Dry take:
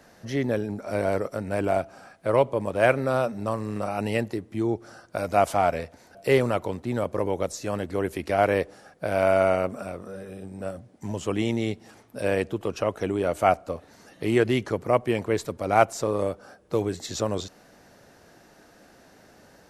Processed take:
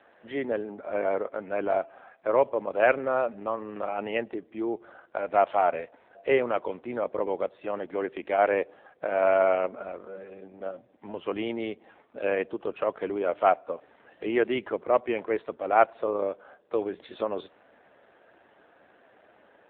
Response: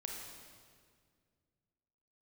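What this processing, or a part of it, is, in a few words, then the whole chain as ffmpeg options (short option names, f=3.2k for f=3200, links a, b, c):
telephone: -af "highpass=360,lowpass=3.5k" -ar 8000 -c:a libopencore_amrnb -b:a 7400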